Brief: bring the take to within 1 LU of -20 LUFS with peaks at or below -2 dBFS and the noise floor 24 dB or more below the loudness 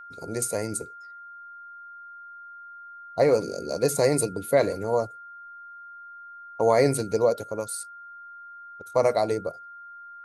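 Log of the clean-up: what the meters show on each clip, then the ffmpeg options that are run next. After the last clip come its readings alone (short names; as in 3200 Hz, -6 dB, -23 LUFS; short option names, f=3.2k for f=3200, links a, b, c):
steady tone 1400 Hz; tone level -41 dBFS; loudness -25.5 LUFS; peak -8.0 dBFS; loudness target -20.0 LUFS
-> -af "bandreject=f=1.4k:w=30"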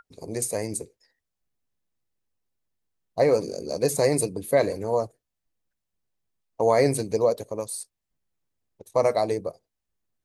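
steady tone none; loudness -25.0 LUFS; peak -8.0 dBFS; loudness target -20.0 LUFS
-> -af "volume=5dB"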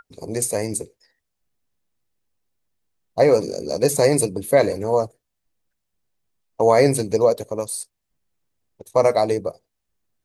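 loudness -20.0 LUFS; peak -3.0 dBFS; noise floor -78 dBFS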